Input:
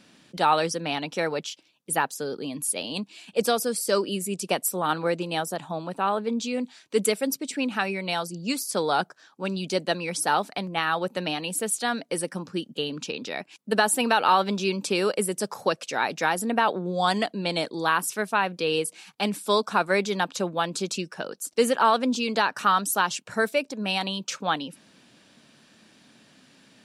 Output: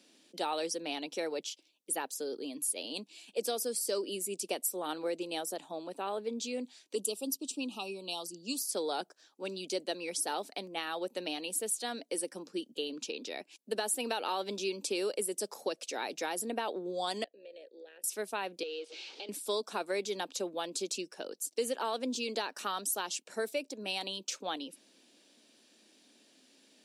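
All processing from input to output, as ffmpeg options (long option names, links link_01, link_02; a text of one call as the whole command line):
ffmpeg -i in.wav -filter_complex "[0:a]asettb=1/sr,asplit=3[link_01][link_02][link_03];[link_01]atrim=end=6.954[link_04];[link_02]atrim=start=6.95:end=8.61,asetpts=PTS-STARTPTS,afade=type=in:duration=0.004:curve=qsin,afade=type=out:start_time=1.656:duration=0.004:curve=qsin,asuperstop=centerf=1800:order=12:qfactor=1.4,equalizer=frequency=550:width=1.6:gain=-6[link_05];[link_03]atrim=start=8.606[link_06];[link_04][link_05]acrossfade=duration=0.004:curve1=hsin:curve2=qsin[link_07];[link_07][link_06]acrossfade=duration=0.004:curve1=qsin:curve2=hsin,asettb=1/sr,asplit=3[link_08][link_09][link_10];[link_08]atrim=end=17.244[link_11];[link_09]atrim=start=17.24:end=18.04,asetpts=PTS-STARTPTS,afade=type=in:duration=0.004:curve=qsin,afade=type=out:start_time=0.796:duration=0.004:curve=qsin,asplit=3[link_12][link_13][link_14];[link_12]bandpass=frequency=530:width_type=q:width=8,volume=0dB[link_15];[link_13]bandpass=frequency=1840:width_type=q:width=8,volume=-6dB[link_16];[link_14]bandpass=frequency=2480:width_type=q:width=8,volume=-9dB[link_17];[link_15][link_16][link_17]amix=inputs=3:normalize=0,acompressor=threshold=-38dB:ratio=5:attack=3.2:release=140:knee=1:detection=peak,tremolo=f=68:d=0.462[link_18];[link_10]atrim=start=18.036[link_19];[link_11][link_18]acrossfade=duration=0.004:curve1=hsin:curve2=qsin[link_20];[link_20][link_19]acrossfade=duration=0.004:curve1=qsin:curve2=hsin,asettb=1/sr,asplit=3[link_21][link_22][link_23];[link_21]atrim=end=18.634[link_24];[link_22]atrim=start=18.63:end=19.29,asetpts=PTS-STARTPTS,afade=type=in:duration=0.004:curve=qsin,afade=type=out:start_time=0.656:duration=0.004:curve=qsin,aeval=exprs='val(0)+0.5*0.0266*sgn(val(0))':channel_layout=same,acompressor=threshold=-29dB:ratio=4:attack=3.2:release=140:knee=1:detection=peak,highpass=frequency=360:width=0.5412,highpass=frequency=360:width=1.3066,equalizer=frequency=710:width_type=q:width=4:gain=-8,equalizer=frequency=1100:width_type=q:width=4:gain=-9,equalizer=frequency=1800:width_type=q:width=4:gain=-9,lowpass=frequency=4600:width=0.5412,lowpass=frequency=4600:width=1.3066[link_25];[link_23]atrim=start=19.286[link_26];[link_24][link_25]acrossfade=duration=0.004:curve1=hsin:curve2=qsin[link_27];[link_27][link_26]acrossfade=duration=0.004:curve1=qsin:curve2=hsin,highpass=frequency=290:width=0.5412,highpass=frequency=290:width=1.3066,equalizer=frequency=1300:width=0.71:gain=-12.5,acompressor=threshold=-28dB:ratio=2.5,volume=-2.5dB" out.wav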